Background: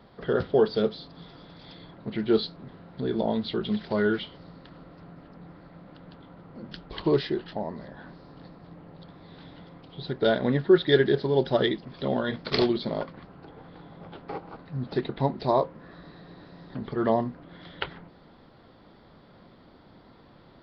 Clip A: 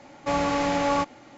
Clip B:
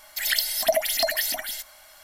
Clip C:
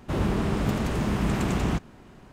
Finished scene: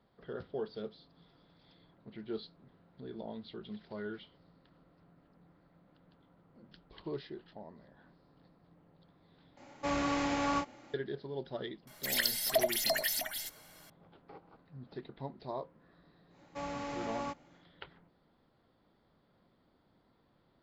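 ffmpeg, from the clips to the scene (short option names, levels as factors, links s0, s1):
-filter_complex "[1:a]asplit=2[s0][s1];[0:a]volume=0.141[s2];[s0]asplit=2[s3][s4];[s4]adelay=31,volume=0.596[s5];[s3][s5]amix=inputs=2:normalize=0[s6];[s2]asplit=2[s7][s8];[s7]atrim=end=9.574[s9];[s6]atrim=end=1.37,asetpts=PTS-STARTPTS,volume=0.398[s10];[s8]atrim=start=10.936[s11];[2:a]atrim=end=2.03,asetpts=PTS-STARTPTS,volume=0.422,afade=t=in:d=0.004:c=hsin,afade=t=out:st=2.026:d=0.004:c=hsin,adelay=11870[s12];[s1]atrim=end=1.37,asetpts=PTS-STARTPTS,volume=0.168,afade=t=in:d=0.1,afade=t=out:st=1.27:d=0.1,adelay=16290[s13];[s9][s10]acrossfade=d=0.004:c1=hsin:c2=hsin[s14];[s14][s11]acrossfade=d=0.004:c1=hsin:c2=hsin[s15];[s15][s12][s13]amix=inputs=3:normalize=0"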